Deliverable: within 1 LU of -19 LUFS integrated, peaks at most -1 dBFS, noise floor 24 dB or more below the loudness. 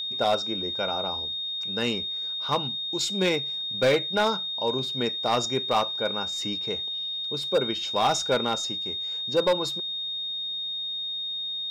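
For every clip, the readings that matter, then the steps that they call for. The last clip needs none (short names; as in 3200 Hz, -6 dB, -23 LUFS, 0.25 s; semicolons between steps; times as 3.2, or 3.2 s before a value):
clipped 0.6%; flat tops at -16.0 dBFS; steady tone 3700 Hz; tone level -29 dBFS; loudness -26.0 LUFS; peak -16.0 dBFS; loudness target -19.0 LUFS
-> clip repair -16 dBFS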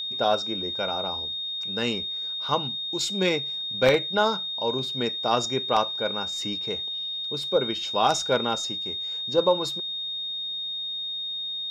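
clipped 0.0%; steady tone 3700 Hz; tone level -29 dBFS
-> notch 3700 Hz, Q 30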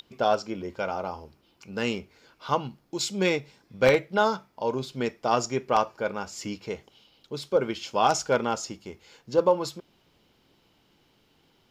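steady tone none; loudness -27.5 LUFS; peak -6.5 dBFS; loudness target -19.0 LUFS
-> gain +8.5 dB; limiter -1 dBFS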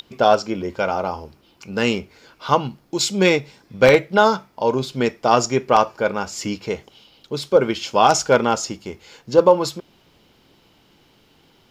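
loudness -19.5 LUFS; peak -1.0 dBFS; noise floor -57 dBFS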